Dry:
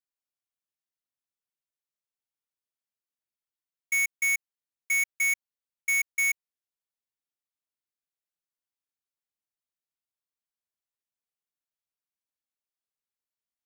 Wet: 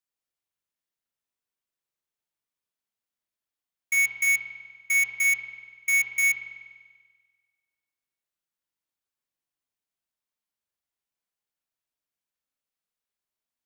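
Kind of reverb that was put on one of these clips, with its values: spring tank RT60 1.6 s, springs 42 ms, chirp 45 ms, DRR 2 dB; gain +1.5 dB

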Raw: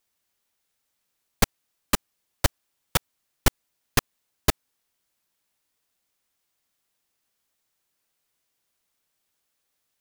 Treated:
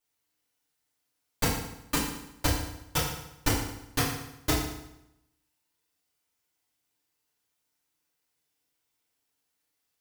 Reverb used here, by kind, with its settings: FDN reverb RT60 0.84 s, low-frequency decay 1.1×, high-frequency decay 0.9×, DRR -8.5 dB; gain -11.5 dB

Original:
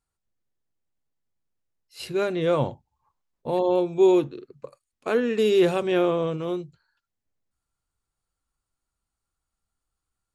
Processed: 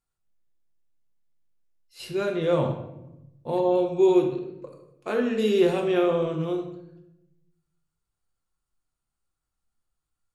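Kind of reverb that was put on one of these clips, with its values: shoebox room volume 270 m³, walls mixed, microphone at 0.88 m; gain -4 dB

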